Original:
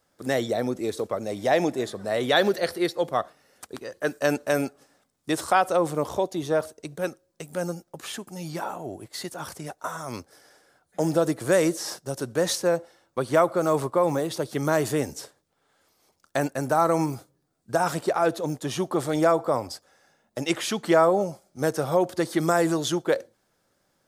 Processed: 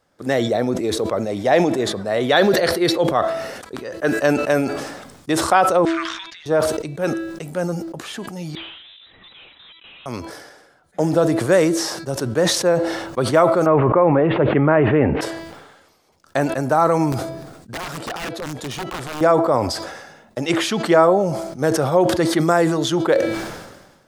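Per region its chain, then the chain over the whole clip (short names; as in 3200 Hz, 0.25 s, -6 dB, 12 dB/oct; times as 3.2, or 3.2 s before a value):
5.85–6.46 steep high-pass 1500 Hz 48 dB/oct + sample leveller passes 2 + tape spacing loss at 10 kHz 32 dB
8.55–10.06 HPF 250 Hz 6 dB/oct + tube stage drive 46 dB, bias 0.65 + inverted band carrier 3900 Hz
13.66–15.21 steep low-pass 2700 Hz 48 dB/oct + fast leveller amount 70%
17.12–19.21 compressor 2.5:1, threshold -32 dBFS + wrapped overs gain 27 dB
whole clip: high shelf 6400 Hz -11 dB; de-hum 329.4 Hz, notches 15; sustainer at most 48 dB/s; gain +5.5 dB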